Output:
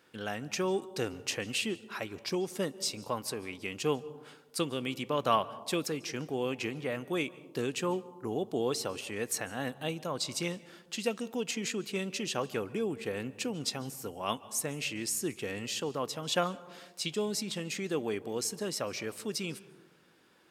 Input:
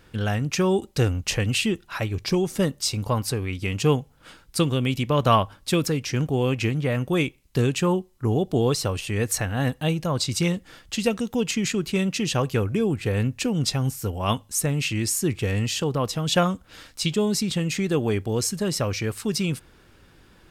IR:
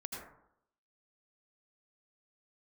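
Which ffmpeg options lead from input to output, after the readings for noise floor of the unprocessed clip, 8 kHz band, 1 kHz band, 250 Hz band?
-55 dBFS, -7.5 dB, -7.5 dB, -11.5 dB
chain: -filter_complex "[0:a]highpass=260,asplit=2[s0][s1];[1:a]atrim=start_sample=2205,asetrate=24696,aresample=44100[s2];[s1][s2]afir=irnorm=-1:irlink=0,volume=0.119[s3];[s0][s3]amix=inputs=2:normalize=0,volume=0.376"

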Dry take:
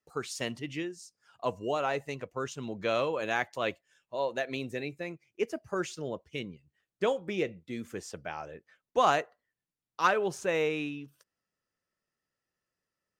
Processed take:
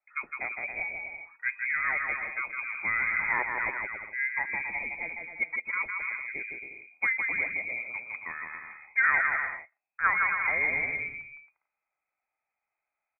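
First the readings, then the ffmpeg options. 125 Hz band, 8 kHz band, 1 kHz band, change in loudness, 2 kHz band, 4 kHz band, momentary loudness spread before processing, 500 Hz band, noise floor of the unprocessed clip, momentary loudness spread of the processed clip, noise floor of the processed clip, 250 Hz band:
under -10 dB, under -35 dB, -1.5 dB, +4.0 dB, +11.5 dB, under -40 dB, 14 LU, -15.5 dB, under -85 dBFS, 12 LU, under -85 dBFS, -14.5 dB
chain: -af "aecho=1:1:160|272|350.4|405.3|443.7:0.631|0.398|0.251|0.158|0.1,lowpass=f=2200:t=q:w=0.5098,lowpass=f=2200:t=q:w=0.6013,lowpass=f=2200:t=q:w=0.9,lowpass=f=2200:t=q:w=2.563,afreqshift=-2600"

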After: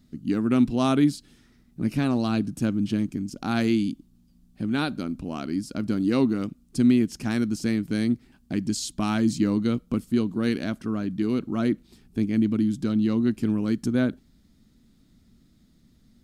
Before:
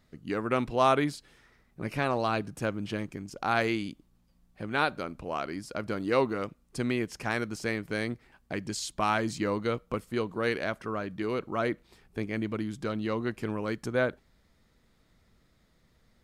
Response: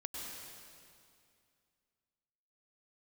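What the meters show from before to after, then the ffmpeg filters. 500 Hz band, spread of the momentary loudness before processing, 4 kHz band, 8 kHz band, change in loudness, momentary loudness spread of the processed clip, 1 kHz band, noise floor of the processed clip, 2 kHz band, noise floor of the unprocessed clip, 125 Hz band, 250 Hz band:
-1.0 dB, 9 LU, +2.5 dB, +4.5 dB, +5.5 dB, 9 LU, -4.5 dB, -60 dBFS, -3.5 dB, -67 dBFS, +7.5 dB, +11.5 dB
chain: -af "equalizer=f=250:t=o:w=1:g=11,equalizer=f=500:t=o:w=1:g=-10,equalizer=f=1000:t=o:w=1:g=-8,equalizer=f=2000:t=o:w=1:g=-8,volume=1.78"

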